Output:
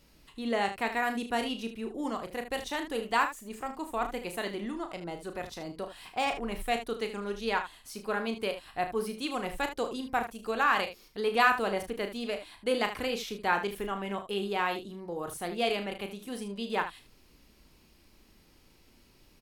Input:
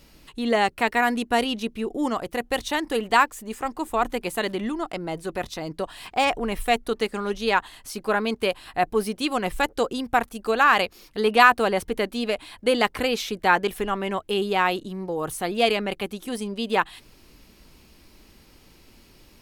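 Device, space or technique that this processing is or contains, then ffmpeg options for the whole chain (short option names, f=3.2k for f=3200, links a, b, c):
slapback doubling: -filter_complex "[0:a]asplit=3[a][b][c];[b]adelay=35,volume=-8dB[d];[c]adelay=76,volume=-11dB[e];[a][d][e]amix=inputs=3:normalize=0,volume=-9dB"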